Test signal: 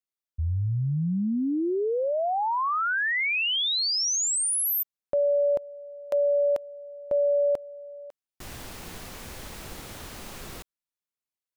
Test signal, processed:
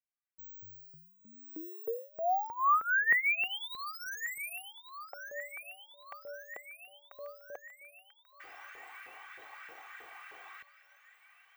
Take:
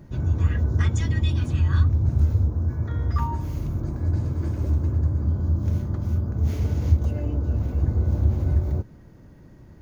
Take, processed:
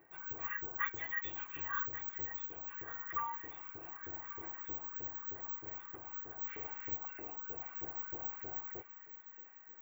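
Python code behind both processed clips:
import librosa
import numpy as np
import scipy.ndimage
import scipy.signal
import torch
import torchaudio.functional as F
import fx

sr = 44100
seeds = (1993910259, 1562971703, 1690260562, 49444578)

p1 = x + 0.79 * np.pad(x, (int(2.6 * sr / 1000.0), 0))[:len(x)]
p2 = (np.kron(scipy.signal.resample_poly(p1, 1, 2), np.eye(2)[0]) * 2)[:len(p1)]
p3 = fx.filter_lfo_highpass(p2, sr, shape='saw_up', hz=3.2, low_hz=430.0, high_hz=1700.0, q=2.5)
p4 = fx.curve_eq(p3, sr, hz=(140.0, 400.0, 2200.0, 4400.0), db=(0, -10, 3, -18))
p5 = p4 + fx.echo_wet_highpass(p4, sr, ms=1138, feedback_pct=59, hz=1400.0, wet_db=-11.5, dry=0)
y = F.gain(torch.from_numpy(p5), -8.5).numpy()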